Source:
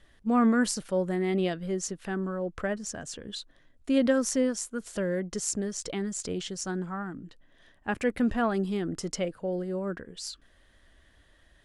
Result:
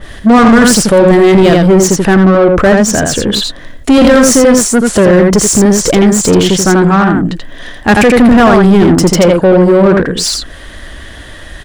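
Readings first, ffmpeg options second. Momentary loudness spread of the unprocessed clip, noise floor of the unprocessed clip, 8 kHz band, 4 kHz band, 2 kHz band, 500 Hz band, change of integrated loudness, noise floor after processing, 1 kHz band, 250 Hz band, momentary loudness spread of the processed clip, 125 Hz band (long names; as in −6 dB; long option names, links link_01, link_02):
14 LU, −62 dBFS, +22.5 dB, +24.0 dB, +23.0 dB, +23.5 dB, +23.0 dB, −30 dBFS, +23.5 dB, +22.0 dB, 8 LU, +25.0 dB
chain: -filter_complex "[0:a]asplit=2[link_01][link_02];[link_02]aecho=0:1:84:0.562[link_03];[link_01][link_03]amix=inputs=2:normalize=0,apsyclip=25dB,acontrast=87,adynamicequalizer=threshold=0.0794:dfrequency=1900:dqfactor=0.7:tfrequency=1900:tqfactor=0.7:attack=5:release=100:ratio=0.375:range=2.5:mode=cutabove:tftype=highshelf,volume=-1.5dB"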